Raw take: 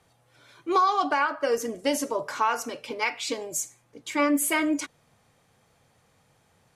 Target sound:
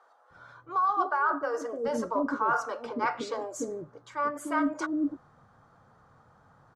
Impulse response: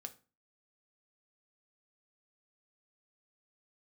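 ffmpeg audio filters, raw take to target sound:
-filter_complex "[0:a]lowpass=5600,highshelf=f=1800:t=q:w=3:g=-10,areverse,acompressor=threshold=0.0398:ratio=8,areverse,acrossover=split=460[s0][s1];[s0]adelay=300[s2];[s2][s1]amix=inputs=2:normalize=0,volume=1.68"

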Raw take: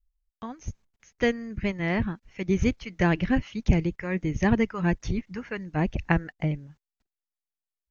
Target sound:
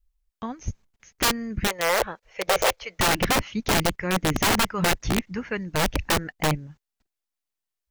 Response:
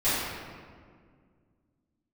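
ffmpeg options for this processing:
-filter_complex "[0:a]aeval=exprs='(mod(10*val(0)+1,2)-1)/10':c=same,asettb=1/sr,asplit=3[s0][s1][s2];[s0]atrim=end=1.674[s3];[s1]atrim=start=1.67:end=2.99,asetpts=PTS-STARTPTS,afade=t=in:d=0.004:c=qsin,afade=t=out:st=1.316:d=0.004:c=qsin,lowshelf=f=360:t=q:w=3:g=-12.5[s4];[s2]atrim=start=2.986[s5];[s3][s4]acrossfade=d=0.004:c1=hsin:c2=qsin[s6];[s6][s5]acrossfade=d=0.004:c1=qsin:c2=hsin,volume=1.68"

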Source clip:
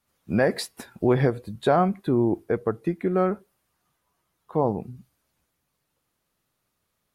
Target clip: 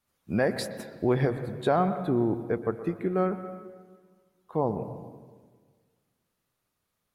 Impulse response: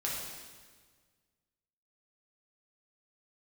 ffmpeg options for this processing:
-filter_complex "[0:a]asplit=2[s0][s1];[1:a]atrim=start_sample=2205,lowpass=2900,adelay=121[s2];[s1][s2]afir=irnorm=-1:irlink=0,volume=0.2[s3];[s0][s3]amix=inputs=2:normalize=0,volume=0.631"

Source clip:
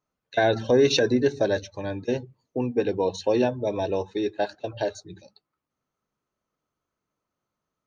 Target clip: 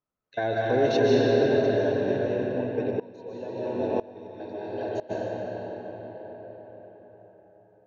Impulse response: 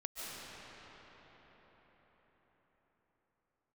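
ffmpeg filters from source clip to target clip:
-filter_complex "[0:a]lowpass=f=2400:p=1[s0];[1:a]atrim=start_sample=2205[s1];[s0][s1]afir=irnorm=-1:irlink=0,asplit=3[s2][s3][s4];[s2]afade=t=out:st=2.9:d=0.02[s5];[s3]aeval=exprs='val(0)*pow(10,-20*if(lt(mod(-1*n/s,1),2*abs(-1)/1000),1-mod(-1*n/s,1)/(2*abs(-1)/1000),(mod(-1*n/s,1)-2*abs(-1)/1000)/(1-2*abs(-1)/1000))/20)':c=same,afade=t=in:st=2.9:d=0.02,afade=t=out:st=5.09:d=0.02[s6];[s4]afade=t=in:st=5.09:d=0.02[s7];[s5][s6][s7]amix=inputs=3:normalize=0,volume=0.841"

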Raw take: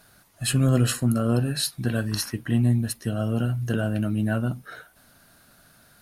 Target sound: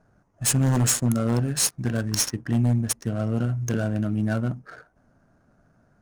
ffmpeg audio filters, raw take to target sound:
-af "highshelf=f=4900:t=q:w=3:g=9,adynamicsmooth=sensitivity=7:basefreq=920,aeval=exprs='0.2*(abs(mod(val(0)/0.2+3,4)-2)-1)':c=same"

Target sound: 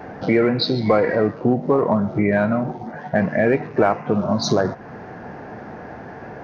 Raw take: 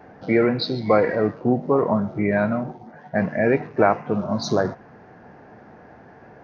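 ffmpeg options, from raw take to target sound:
-filter_complex "[0:a]asplit=2[s0][s1];[s1]aeval=exprs='clip(val(0),-1,0.224)':c=same,volume=0.355[s2];[s0][s2]amix=inputs=2:normalize=0,acompressor=threshold=0.0355:ratio=2,volume=2.51"

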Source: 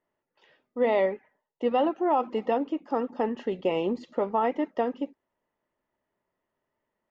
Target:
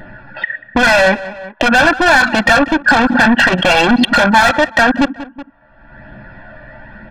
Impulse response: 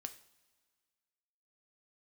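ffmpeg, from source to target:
-filter_complex "[0:a]aresample=11025,aeval=exprs='clip(val(0),-1,0.0531)':c=same,aresample=44100,acompressor=threshold=0.0126:ratio=16,flanger=delay=0.3:depth=1.4:regen=53:speed=0.98:shape=sinusoidal,agate=range=0.316:threshold=0.001:ratio=16:detection=peak,asplit=2[s0][s1];[s1]highpass=f=1400:t=q:w=9.3[s2];[1:a]atrim=start_sample=2205[s3];[s2][s3]afir=irnorm=-1:irlink=0,volume=1.12[s4];[s0][s4]amix=inputs=2:normalize=0,anlmdn=0.00251,asplit=2[s5][s6];[s6]highpass=f=720:p=1,volume=35.5,asoftclip=type=tanh:threshold=0.0398[s7];[s5][s7]amix=inputs=2:normalize=0,lowpass=f=3300:p=1,volume=0.501,aecho=1:1:1.2:0.97,asplit=2[s8][s9];[s9]adelay=186,lowpass=f=3300:p=1,volume=0.075,asplit=2[s10][s11];[s11]adelay=186,lowpass=f=3300:p=1,volume=0.32[s12];[s8][s10][s12]amix=inputs=3:normalize=0,acompressor=mode=upward:threshold=0.0158:ratio=2.5,alimiter=level_in=37.6:limit=0.891:release=50:level=0:latency=1,volume=0.841"

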